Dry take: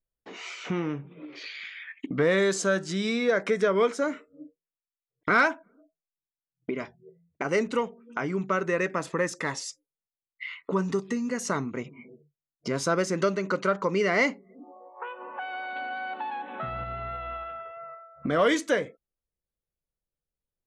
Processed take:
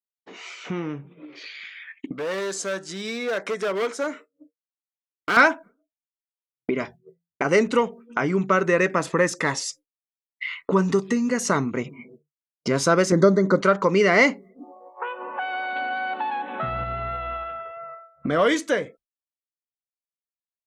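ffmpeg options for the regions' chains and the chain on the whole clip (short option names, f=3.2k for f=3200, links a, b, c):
-filter_complex "[0:a]asettb=1/sr,asplit=3[a][b][c];[a]atrim=end=2.124[d];[b]atrim=start=2.12:end=5.37,asetpts=PTS-STARTPTS,afade=t=in:d=0.004:c=qsin,afade=t=out:st=3.246:d=0.004:c=qsin,equalizer=f=2.5k:t=o:w=2.6:g=-3.5,asoftclip=type=hard:threshold=-22.5dB,highpass=f=560:p=1[e];[c]atrim=start=5.366[f];[d][e]acrossfade=d=0.004:c1=hsin:c2=qsin[g];[g][f]acrossfade=d=0.004:c1=qsin:c2=hsin,asettb=1/sr,asplit=3[h][i][j];[h]atrim=end=13.124[k];[i]atrim=start=13.12:end=13.61,asetpts=PTS-STARTPTS,afade=t=in:d=0.004:c=qsin,afade=t=out:st=0.486:d=0.004:c=qsin,asuperstop=centerf=2700:order=20:qfactor=2.3,tiltshelf=f=730:g=6[l];[j]atrim=start=13.606[m];[k][l]acrossfade=d=0.004:c1=hsin:c2=qsin[n];[n][m]acrossfade=d=0.004:c1=qsin:c2=hsin,agate=range=-33dB:threshold=-44dB:ratio=3:detection=peak,dynaudnorm=f=610:g=11:m=7dB"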